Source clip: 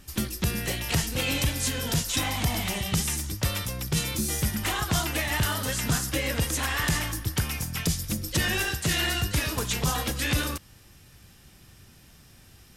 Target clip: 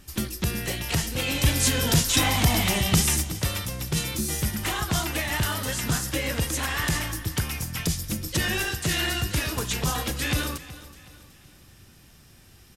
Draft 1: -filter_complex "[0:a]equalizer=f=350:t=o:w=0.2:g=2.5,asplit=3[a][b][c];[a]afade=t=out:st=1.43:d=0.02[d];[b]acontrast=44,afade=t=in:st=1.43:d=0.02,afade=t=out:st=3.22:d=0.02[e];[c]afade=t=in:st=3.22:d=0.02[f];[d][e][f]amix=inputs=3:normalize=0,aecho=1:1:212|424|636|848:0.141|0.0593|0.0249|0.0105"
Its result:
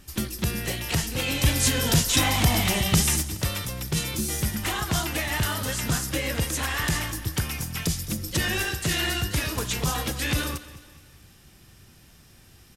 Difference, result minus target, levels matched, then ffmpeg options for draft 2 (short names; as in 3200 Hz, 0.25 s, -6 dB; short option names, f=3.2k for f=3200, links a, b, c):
echo 0.161 s early
-filter_complex "[0:a]equalizer=f=350:t=o:w=0.2:g=2.5,asplit=3[a][b][c];[a]afade=t=out:st=1.43:d=0.02[d];[b]acontrast=44,afade=t=in:st=1.43:d=0.02,afade=t=out:st=3.22:d=0.02[e];[c]afade=t=in:st=3.22:d=0.02[f];[d][e][f]amix=inputs=3:normalize=0,aecho=1:1:373|746|1119|1492:0.141|0.0593|0.0249|0.0105"